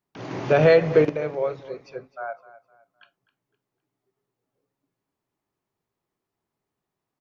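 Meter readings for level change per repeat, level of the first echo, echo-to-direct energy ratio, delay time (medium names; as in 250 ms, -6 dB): -9.5 dB, -17.0 dB, -16.5 dB, 256 ms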